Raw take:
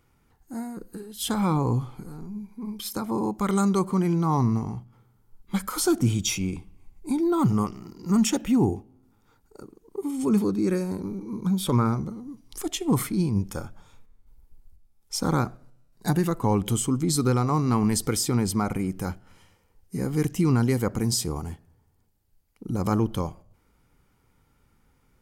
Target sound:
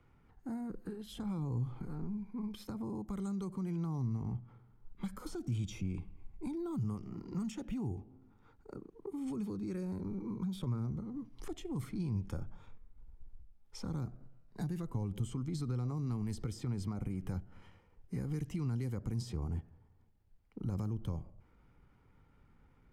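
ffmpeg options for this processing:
-filter_complex "[0:a]bass=f=250:g=2,treble=f=4k:g=-13,atempo=1.1,highshelf=f=8k:g=-6.5,acrossover=split=2900|6600[a][b][c];[a]acompressor=threshold=-27dB:ratio=4[d];[b]acompressor=threshold=-47dB:ratio=4[e];[c]acompressor=threshold=-59dB:ratio=4[f];[d][e][f]amix=inputs=3:normalize=0,acrossover=split=140|560|5700[g][h][i][j];[h]alimiter=level_in=10.5dB:limit=-24dB:level=0:latency=1:release=246,volume=-10.5dB[k];[i]acompressor=threshold=-52dB:ratio=6[l];[g][k][l][j]amix=inputs=4:normalize=0,volume=-2dB"

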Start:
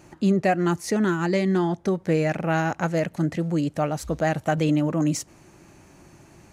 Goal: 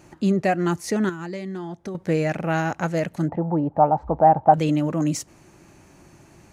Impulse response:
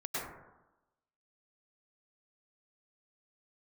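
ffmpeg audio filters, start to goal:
-filter_complex "[0:a]asettb=1/sr,asplit=3[a][b][c];[a]atrim=end=1.094[d];[b]atrim=start=1.09:end=1.95,asetpts=PTS-STARTPTS,afade=t=in:d=0.004:c=qsin,afade=t=out:st=0.856:d=0.004:c=qsin,acompressor=threshold=-34dB:ratio=2.5[e];[c]atrim=start=1.946[f];[d][e]acrossfade=d=0.004:c1=hsin:c2=qsin[g];[g][f]acrossfade=d=0.004:c1=qsin:c2=hsin,asettb=1/sr,asplit=3[h][i][j];[h]atrim=end=3.284[k];[i]atrim=start=3.28:end=4.54,asetpts=PTS-STARTPTS,afade=t=in:d=0.004:c=qsin,afade=t=out:st=1.256:d=0.004:c=qsin,lowpass=f=860:t=q:w=8.3[l];[j]atrim=start=4.536[m];[k][l]acrossfade=d=0.004:c1=hsin:c2=qsin[n];[n][m]acrossfade=d=0.004:c1=qsin:c2=hsin"

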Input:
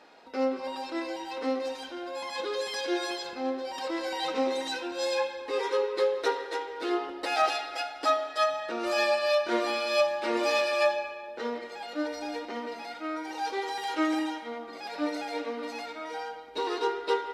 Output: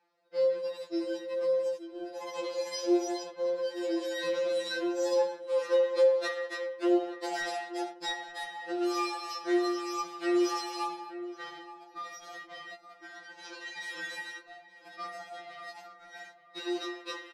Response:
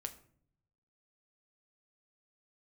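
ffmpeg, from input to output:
-filter_complex "[0:a]asettb=1/sr,asplit=3[a][b][c];[a]atrim=end=13.174[d];[b]atrim=start=13.17:end=13.83,asetpts=PTS-STARTPTS,afade=t=in:d=0.004:c=qsin,afade=t=out:st=0.656:d=0.004:c=qsin,lowpass=6.7k[e];[c]atrim=start=13.826[f];[d][e]acrossfade=d=0.004:c1=hsin:c2=qsin[g];[g][f]acrossfade=d=0.004:c1=qsin:c2=hsin,asettb=1/sr,asplit=3[h][i][j];[h]atrim=end=15.064[k];[i]atrim=start=15.06:end=15.51,asetpts=PTS-STARTPTS,afade=t=in:d=0.004:c=qsin,afade=t=out:st=0.446:d=0.004:c=qsin,highshelf=f=2.1k:g=-6.5[l];[j]atrim=start=15.506[m];[k][l]acrossfade=d=0.004:c1=hsin:c2=qsin[n];[n][m]acrossfade=d=0.004:c1=qsin:c2=hsin,agate=range=-18dB:threshold=-36dB:ratio=16:detection=peak,asettb=1/sr,asplit=3[o][p][q];[o]atrim=end=1.334[r];[p]atrim=start=1.33:end=1.83,asetpts=PTS-STARTPTS,afade=t=in:d=0.004:c=qsin,afade=t=out:st=0.496:d=0.004:c=qsin,equalizer=f=2.7k:t=o:w=1.7:g=-6.5[s];[q]atrim=start=1.826[t];[r][s]acrossfade=d=0.004:c1=hsin:c2=qsin[u];[u][t]acrossfade=d=0.004:c1=qsin:c2=hsin,asplit=2[v][w];[w]adelay=874.6,volume=-12dB,highshelf=f=4k:g=-19.7[x];[v][x]amix=inputs=2:normalize=0,afftfilt=real='re*2.83*eq(mod(b,8),0)':imag='im*2.83*eq(mod(b,8),0)':win_size=2048:overlap=0.75"

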